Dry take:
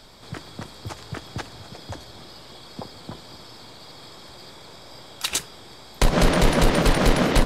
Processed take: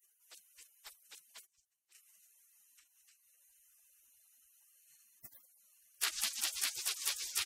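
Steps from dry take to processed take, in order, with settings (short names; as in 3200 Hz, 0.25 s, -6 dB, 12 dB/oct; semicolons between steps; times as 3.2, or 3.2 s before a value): 1.46–1.95 gate -30 dBFS, range -23 dB; low shelf 63 Hz -5.5 dB; speakerphone echo 0.19 s, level -11 dB; 2.72–3.41 compressor 6:1, threshold -40 dBFS, peak gain reduction 10.5 dB; spectral gate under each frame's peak -30 dB weak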